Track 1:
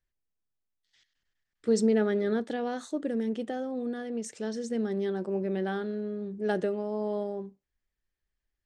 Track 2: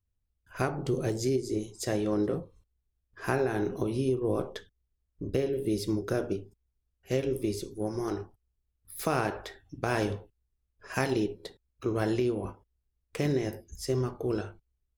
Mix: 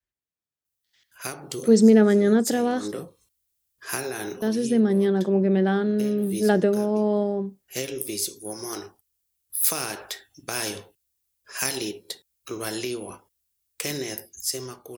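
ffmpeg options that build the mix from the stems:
-filter_complex "[0:a]highpass=62,volume=-2dB,asplit=3[a][b][c];[a]atrim=end=2.88,asetpts=PTS-STARTPTS,afade=t=out:st=2.876:d=0.004:c=hsin[d];[b]atrim=start=2.88:end=4.42,asetpts=PTS-STARTPTS,volume=0[e];[c]atrim=start=4.42,asetpts=PTS-STARTPTS,afade=t=in:d=0.004:c=hsin[f];[d][e][f]concat=n=3:v=0:a=1,asplit=2[g][h];[1:a]highpass=f=240:p=1,acrossover=split=420|3000[i][j][k];[j]acompressor=threshold=-32dB:ratio=6[l];[i][l][k]amix=inputs=3:normalize=0,crystalizer=i=8:c=0,adelay=650,volume=-11.5dB[m];[h]apad=whole_len=688936[n];[m][n]sidechaincompress=threshold=-41dB:ratio=8:attack=11:release=153[o];[g][o]amix=inputs=2:normalize=0,adynamicequalizer=threshold=0.00794:dfrequency=180:dqfactor=0.93:tfrequency=180:tqfactor=0.93:attack=5:release=100:ratio=0.375:range=2.5:mode=boostabove:tftype=bell,dynaudnorm=f=180:g=13:m=9dB"

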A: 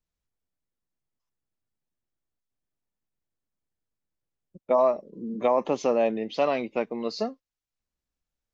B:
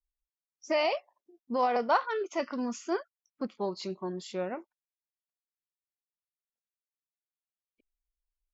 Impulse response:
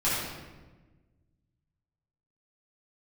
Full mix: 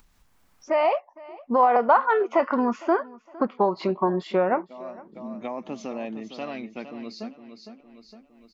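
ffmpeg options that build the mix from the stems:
-filter_complex "[0:a]equalizer=f=250:t=o:w=1:g=5,equalizer=f=500:t=o:w=1:g=-10,equalizer=f=1k:t=o:w=1:g=-12,volume=-6.5dB,asplit=2[a][b];[b]volume=-10.5dB[c];[1:a]dynaudnorm=f=360:g=7:m=14.5dB,lowpass=2.2k,acompressor=threshold=-20dB:ratio=6,volume=-2dB,asplit=3[d][e][f];[e]volume=-22dB[g];[f]apad=whole_len=376534[h];[a][h]sidechaincompress=threshold=-41dB:ratio=8:attack=5.4:release=351[i];[c][g]amix=inputs=2:normalize=0,aecho=0:1:460|920|1380|1840:1|0.28|0.0784|0.022[j];[i][d][j]amix=inputs=3:normalize=0,equalizer=f=970:t=o:w=1.8:g=9,acompressor=mode=upward:threshold=-38dB:ratio=2.5"

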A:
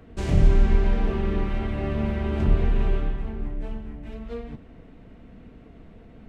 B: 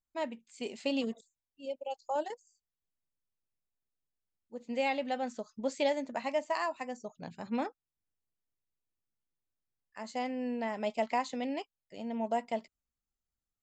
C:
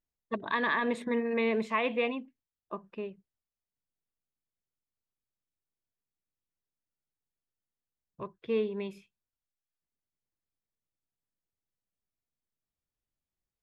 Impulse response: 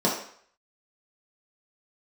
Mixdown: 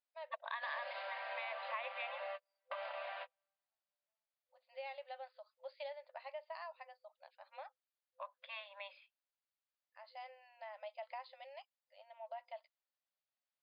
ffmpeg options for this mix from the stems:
-filter_complex "[0:a]adelay=450,volume=-1dB[a];[1:a]volume=-12.5dB[b];[2:a]volume=-1dB,asplit=2[c][d];[d]apad=whole_len=297171[e];[a][e]sidechaingate=range=-52dB:threshold=-56dB:ratio=16:detection=peak[f];[f][b][c]amix=inputs=3:normalize=0,afftfilt=real='re*between(b*sr/4096,510,5000)':imag='im*between(b*sr/4096,510,5000)':win_size=4096:overlap=0.75,acompressor=threshold=-43dB:ratio=3"

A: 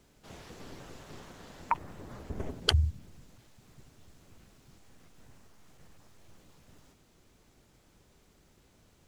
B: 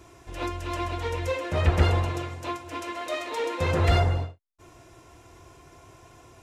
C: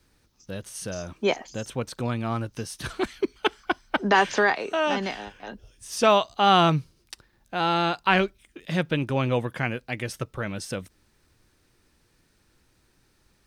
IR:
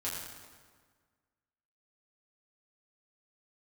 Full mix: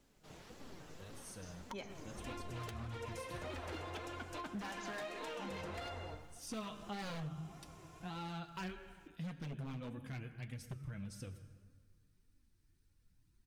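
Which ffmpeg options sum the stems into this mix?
-filter_complex "[0:a]volume=-2.5dB[a];[1:a]acrossover=split=300|3000[b][c][d];[b]acompressor=threshold=-43dB:ratio=2[e];[e][c][d]amix=inputs=3:normalize=0,adelay=1900,volume=-3.5dB,asplit=2[f][g];[g]volume=-17dB[h];[2:a]asubboost=boost=5.5:cutoff=220,flanger=delay=0.7:depth=4.4:regen=-42:speed=0.39:shape=triangular,highshelf=f=7.6k:g=8.5,adelay=500,volume=-13.5dB,asplit=2[i][j];[j]volume=-10dB[k];[a][f]amix=inputs=2:normalize=0,acompressor=threshold=-36dB:ratio=6,volume=0dB[l];[3:a]atrim=start_sample=2205[m];[h][k]amix=inputs=2:normalize=0[n];[n][m]afir=irnorm=-1:irlink=0[o];[i][l][o]amix=inputs=3:normalize=0,aeval=exprs='0.0355*(abs(mod(val(0)/0.0355+3,4)-2)-1)':c=same,flanger=delay=3.5:depth=3.2:regen=50:speed=1.7:shape=sinusoidal,acompressor=threshold=-42dB:ratio=3"

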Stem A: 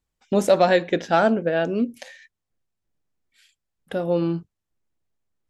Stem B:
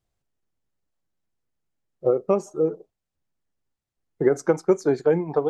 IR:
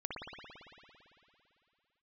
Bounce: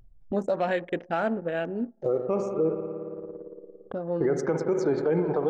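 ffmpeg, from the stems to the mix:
-filter_complex "[0:a]afwtdn=0.0251,equalizer=f=6.8k:t=o:w=1.7:g=10.5,volume=-8dB,asplit=2[a][b];[b]volume=-22.5dB[c];[1:a]lowpass=5.3k,volume=-0.5dB,asplit=2[d][e];[e]volume=-9dB[f];[2:a]atrim=start_sample=2205[g];[c][f]amix=inputs=2:normalize=0[h];[h][g]afir=irnorm=-1:irlink=0[i];[a][d][i]amix=inputs=3:normalize=0,anlmdn=0.398,acompressor=mode=upward:threshold=-30dB:ratio=2.5,alimiter=limit=-16.5dB:level=0:latency=1:release=49"

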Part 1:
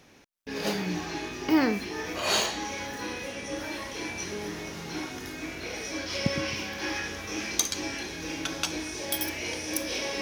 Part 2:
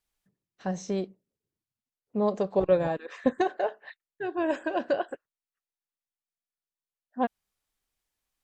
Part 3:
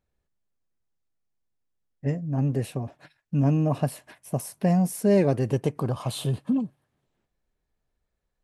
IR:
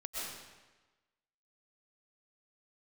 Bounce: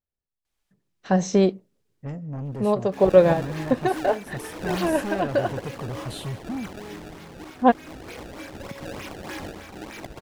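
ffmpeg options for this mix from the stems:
-filter_complex "[0:a]alimiter=limit=-19dB:level=0:latency=1:release=180,tremolo=f=0.88:d=0.34,acrusher=samples=24:mix=1:aa=0.000001:lfo=1:lforange=38.4:lforate=3.3,adelay=2450,volume=-14.5dB[a];[1:a]adelay=450,volume=-1dB[b];[2:a]asoftclip=type=tanh:threshold=-26.5dB,volume=-14.5dB,asplit=3[c][d][e];[d]volume=-23dB[f];[e]apad=whole_len=392033[g];[b][g]sidechaincompress=threshold=-51dB:ratio=8:attack=16:release=939[h];[3:a]atrim=start_sample=2205[i];[f][i]afir=irnorm=-1:irlink=0[j];[a][h][c][j]amix=inputs=4:normalize=0,highshelf=f=10k:g=-7,dynaudnorm=f=130:g=13:m=13dB"

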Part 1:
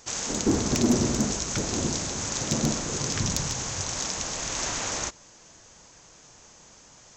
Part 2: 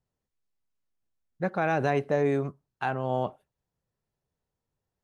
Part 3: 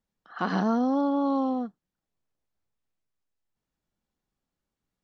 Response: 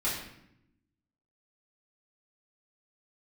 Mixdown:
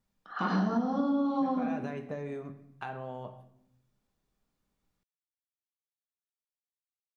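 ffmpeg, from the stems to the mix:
-filter_complex "[1:a]acompressor=threshold=-32dB:ratio=2.5,volume=-5dB,asplit=2[a][b];[b]volume=-14.5dB[c];[2:a]volume=0dB,asplit=2[d][e];[e]volume=-9dB[f];[a][d]amix=inputs=2:normalize=0,acompressor=threshold=-37dB:ratio=2,volume=0dB[g];[3:a]atrim=start_sample=2205[h];[c][f]amix=inputs=2:normalize=0[i];[i][h]afir=irnorm=-1:irlink=0[j];[g][j]amix=inputs=2:normalize=0,acompressor=threshold=-25dB:ratio=6"

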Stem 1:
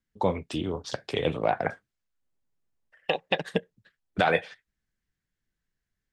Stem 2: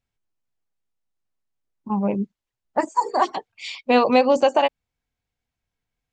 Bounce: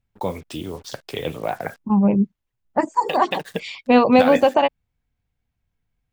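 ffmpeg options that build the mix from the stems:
-filter_complex "[0:a]acrusher=bits=7:mix=0:aa=0.5,volume=-0.5dB[a];[1:a]bass=f=250:g=9,treble=f=4k:g=-10,volume=1dB[b];[a][b]amix=inputs=2:normalize=0,highshelf=f=8.1k:g=10"

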